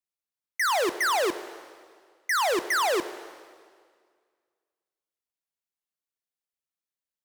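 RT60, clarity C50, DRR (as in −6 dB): 1.9 s, 13.5 dB, 12.0 dB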